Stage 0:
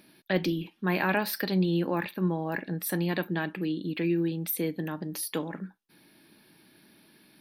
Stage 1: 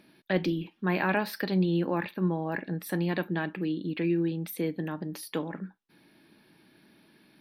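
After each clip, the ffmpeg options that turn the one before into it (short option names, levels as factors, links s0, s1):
-af "highshelf=f=5600:g=-11"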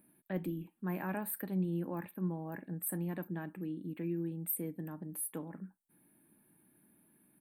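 -af "firequalizer=gain_entry='entry(250,0);entry(400,-5);entry(880,-4);entry(5600,-25);entry(7900,13)':delay=0.05:min_phase=1,volume=0.422"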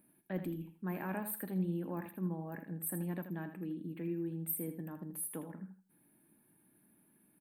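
-af "aecho=1:1:80|160|240:0.316|0.0696|0.0153,volume=0.841"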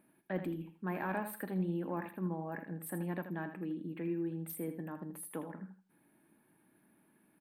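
-filter_complex "[0:a]asplit=2[s0][s1];[s1]highpass=f=720:p=1,volume=2.51,asoftclip=type=tanh:threshold=0.0596[s2];[s0][s2]amix=inputs=2:normalize=0,lowpass=f=1900:p=1,volume=0.501,volume=1.5"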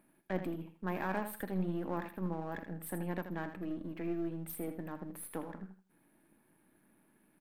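-af "aeval=exprs='if(lt(val(0),0),0.447*val(0),val(0))':c=same,volume=1.33"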